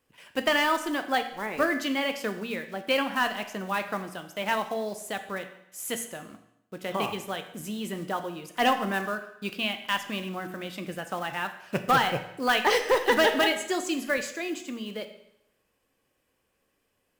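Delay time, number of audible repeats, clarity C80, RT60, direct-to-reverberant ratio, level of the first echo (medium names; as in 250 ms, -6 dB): no echo, no echo, 13.0 dB, 0.80 s, 7.0 dB, no echo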